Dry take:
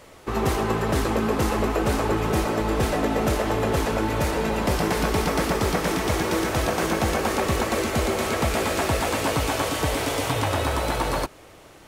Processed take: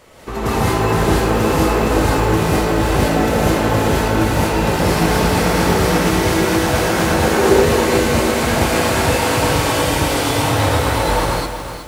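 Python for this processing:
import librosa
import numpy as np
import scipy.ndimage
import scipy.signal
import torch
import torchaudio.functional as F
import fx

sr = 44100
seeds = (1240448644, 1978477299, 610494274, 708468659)

y = fx.peak_eq(x, sr, hz=410.0, db=13.5, octaves=0.29, at=(7.27, 7.69))
y = fx.rev_gated(y, sr, seeds[0], gate_ms=230, shape='rising', drr_db=-6.5)
y = fx.echo_crushed(y, sr, ms=368, feedback_pct=35, bits=6, wet_db=-9.0)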